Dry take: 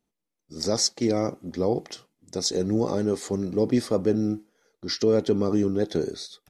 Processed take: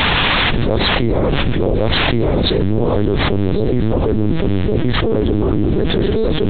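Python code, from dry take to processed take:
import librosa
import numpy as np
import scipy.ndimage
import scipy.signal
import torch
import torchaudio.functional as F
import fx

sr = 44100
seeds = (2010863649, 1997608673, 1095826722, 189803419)

p1 = fx.octave_divider(x, sr, octaves=1, level_db=3.0)
p2 = p1 + fx.echo_single(p1, sr, ms=1114, db=-3.5, dry=0)
p3 = fx.dmg_noise_colour(p2, sr, seeds[0], colour='white', level_db=-41.0)
p4 = fx.lpc_vocoder(p3, sr, seeds[1], excitation='pitch_kept', order=8)
p5 = fx.env_flatten(p4, sr, amount_pct=100)
y = p5 * 10.0 ** (-1.0 / 20.0)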